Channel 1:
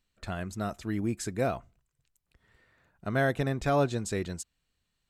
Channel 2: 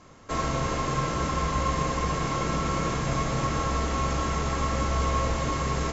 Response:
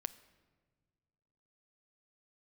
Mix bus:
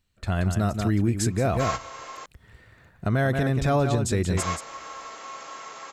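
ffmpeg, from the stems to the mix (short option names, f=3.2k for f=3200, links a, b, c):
-filter_complex "[0:a]equalizer=f=89:w=0.81:g=8,volume=2.5dB,asplit=3[a][b][c];[b]volume=-9dB[d];[1:a]highpass=670,adelay=1300,volume=-4.5dB,asplit=3[e][f][g];[e]atrim=end=2.26,asetpts=PTS-STARTPTS,afade=t=out:st=2.256:d=0.004:c=hsin[h];[f]atrim=start=2.26:end=4.37,asetpts=PTS-STARTPTS,volume=0[i];[g]atrim=start=4.37,asetpts=PTS-STARTPTS,afade=t=in:d=0.004:c=hsin[j];[h][i][j]concat=n=3:v=0:a=1[k];[c]apad=whole_len=318692[l];[k][l]sidechaingate=range=-11dB:threshold=-51dB:ratio=16:detection=peak[m];[d]aecho=0:1:179:1[n];[a][m][n]amix=inputs=3:normalize=0,dynaudnorm=f=260:g=3:m=7.5dB,alimiter=limit=-13.5dB:level=0:latency=1:release=138"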